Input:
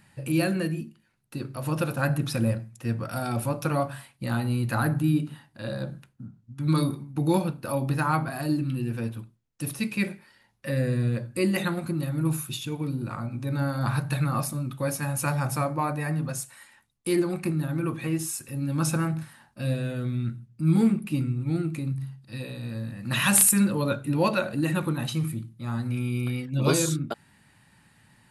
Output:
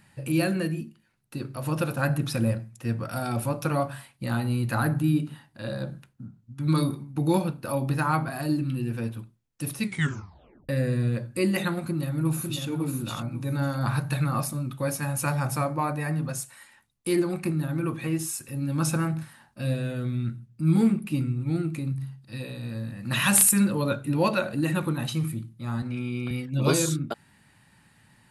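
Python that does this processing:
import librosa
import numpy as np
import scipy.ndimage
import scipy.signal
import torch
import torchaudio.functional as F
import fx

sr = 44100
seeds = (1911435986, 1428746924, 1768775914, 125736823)

y = fx.echo_throw(x, sr, start_s=11.81, length_s=0.86, ms=550, feedback_pct=20, wet_db=-4.5)
y = fx.bandpass_edges(y, sr, low_hz=150.0, high_hz=5700.0, at=(25.82, 26.31))
y = fx.edit(y, sr, fx.tape_stop(start_s=9.83, length_s=0.86), tone=tone)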